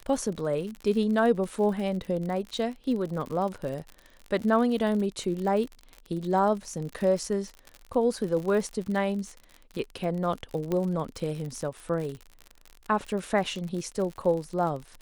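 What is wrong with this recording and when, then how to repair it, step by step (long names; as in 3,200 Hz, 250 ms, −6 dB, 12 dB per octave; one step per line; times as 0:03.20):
surface crackle 56 per second −33 dBFS
0:10.72: click −17 dBFS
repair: click removal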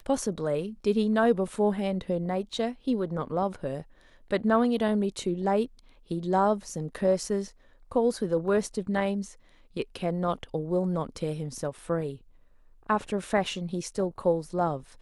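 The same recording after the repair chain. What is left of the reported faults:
0:10.72: click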